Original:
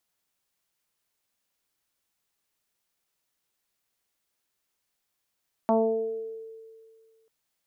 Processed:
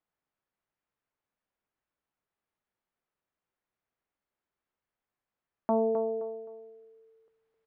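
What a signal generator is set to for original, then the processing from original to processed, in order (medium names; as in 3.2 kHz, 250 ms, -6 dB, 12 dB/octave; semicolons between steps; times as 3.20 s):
FM tone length 1.59 s, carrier 447 Hz, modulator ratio 0.5, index 2.2, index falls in 1.18 s exponential, decay 2.02 s, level -16.5 dB
gain riding within 3 dB 0.5 s; low-pass 1.7 kHz 12 dB/octave; feedback delay 261 ms, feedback 29%, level -9 dB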